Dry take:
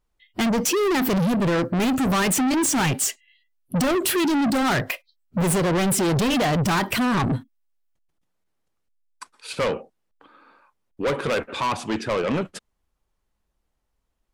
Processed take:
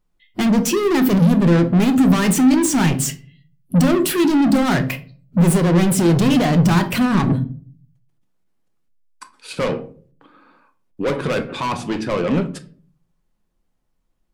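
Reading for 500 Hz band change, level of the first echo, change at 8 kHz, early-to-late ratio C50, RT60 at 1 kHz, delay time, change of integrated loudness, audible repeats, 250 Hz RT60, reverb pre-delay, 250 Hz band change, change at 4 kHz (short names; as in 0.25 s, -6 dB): +3.0 dB, none, +0.5 dB, 15.0 dB, 0.35 s, none, +5.5 dB, none, 0.65 s, 3 ms, +7.5 dB, +0.5 dB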